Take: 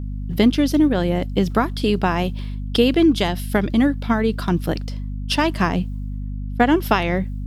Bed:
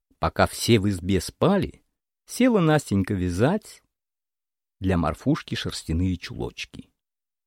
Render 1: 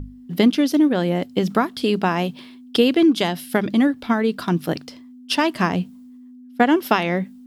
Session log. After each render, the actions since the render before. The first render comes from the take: notches 50/100/150/200 Hz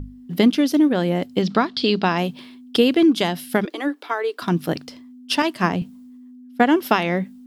1.42–2.18 synth low-pass 4400 Hz, resonance Q 2.8; 3.65–4.42 rippled Chebyshev high-pass 290 Hz, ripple 3 dB; 5.42–5.82 three-band expander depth 100%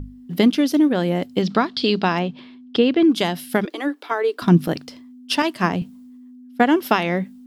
2.19–3.1 air absorption 160 m; 4.11–4.68 low shelf 320 Hz +10.5 dB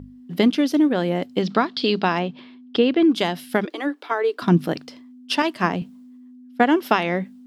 HPF 180 Hz 6 dB/oct; high shelf 7200 Hz -8.5 dB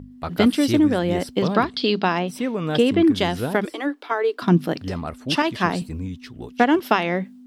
add bed -6 dB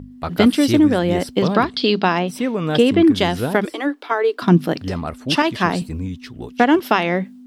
gain +3.5 dB; limiter -2 dBFS, peak gain reduction 2.5 dB

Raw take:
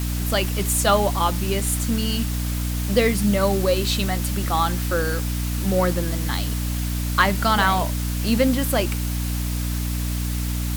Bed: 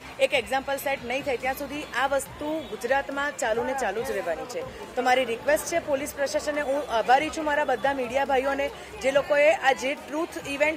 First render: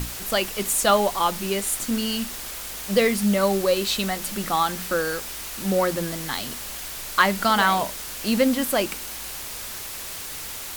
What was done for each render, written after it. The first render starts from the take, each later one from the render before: notches 60/120/180/240/300 Hz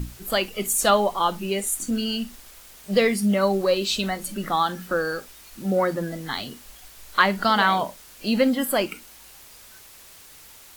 noise print and reduce 13 dB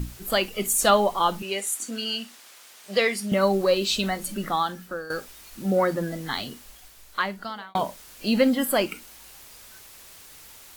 1.42–3.32 weighting filter A; 4.35–5.1 fade out, to -13.5 dB; 6.42–7.75 fade out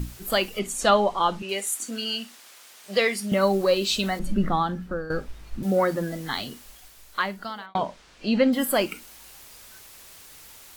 0.59–1.49 air absorption 66 m; 4.19–5.63 RIAA curve playback; 7.66–8.53 air absorption 120 m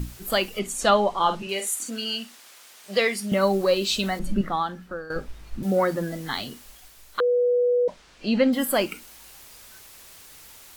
1.16–1.9 doubler 48 ms -8 dB; 4.41–5.16 low shelf 330 Hz -11 dB; 7.2–7.88 bleep 489 Hz -17.5 dBFS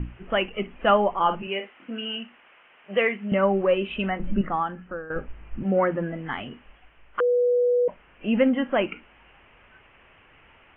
steep low-pass 3000 Hz 96 dB/oct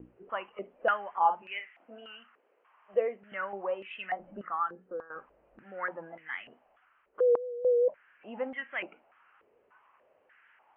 vibrato 4.6 Hz 43 cents; stepped band-pass 3.4 Hz 450–2000 Hz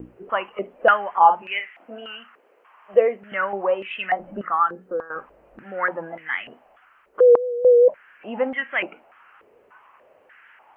gain +11.5 dB; limiter -3 dBFS, peak gain reduction 1 dB

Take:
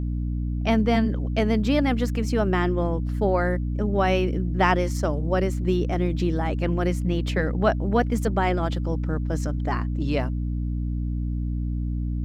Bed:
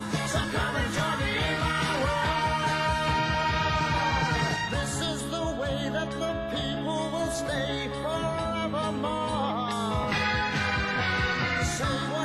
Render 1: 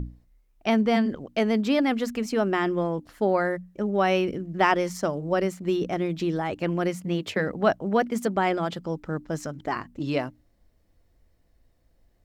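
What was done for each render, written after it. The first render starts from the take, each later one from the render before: notches 60/120/180/240/300 Hz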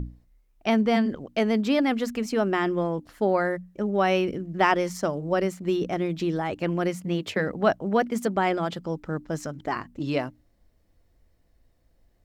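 nothing audible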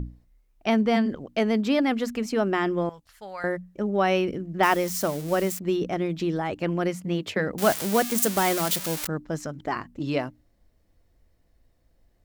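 2.89–3.44 passive tone stack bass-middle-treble 10-0-10; 4.63–5.59 switching spikes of -25.5 dBFS; 7.58–9.07 switching spikes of -15 dBFS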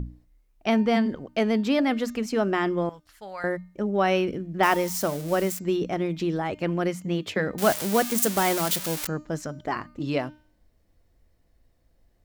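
de-hum 304.2 Hz, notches 25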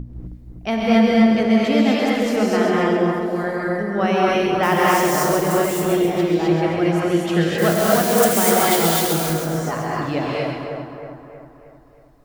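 split-band echo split 1800 Hz, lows 0.316 s, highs 0.134 s, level -5 dB; non-linear reverb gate 0.28 s rising, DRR -4.5 dB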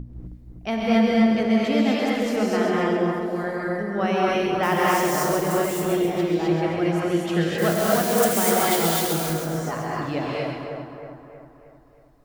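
gain -4 dB

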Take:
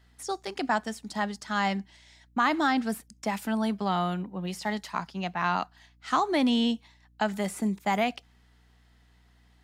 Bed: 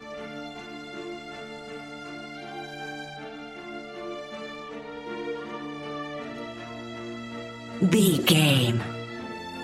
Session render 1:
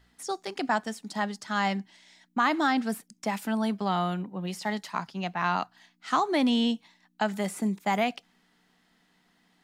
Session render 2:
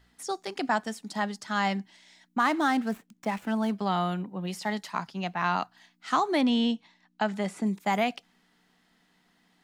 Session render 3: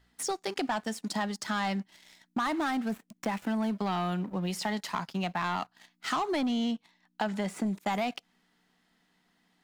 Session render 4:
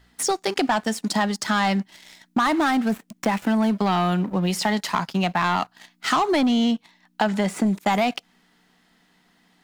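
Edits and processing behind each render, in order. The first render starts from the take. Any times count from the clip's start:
de-hum 60 Hz, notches 2
2.39–3.77 median filter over 9 samples; 6.41–7.67 air absorption 64 m
sample leveller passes 2; compressor 3:1, threshold -31 dBFS, peak gain reduction 10 dB
gain +9.5 dB

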